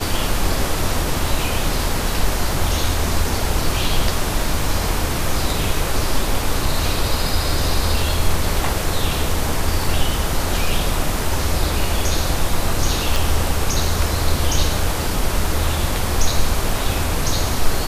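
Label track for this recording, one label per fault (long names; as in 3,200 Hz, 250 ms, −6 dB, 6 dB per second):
13.160000	13.160000	click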